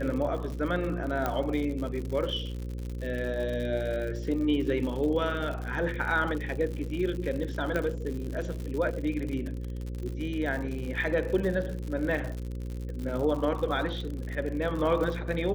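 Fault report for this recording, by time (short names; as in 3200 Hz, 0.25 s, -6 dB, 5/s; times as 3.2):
buzz 60 Hz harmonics 9 -35 dBFS
crackle 89/s -34 dBFS
1.26 pop -15 dBFS
7.76 pop -17 dBFS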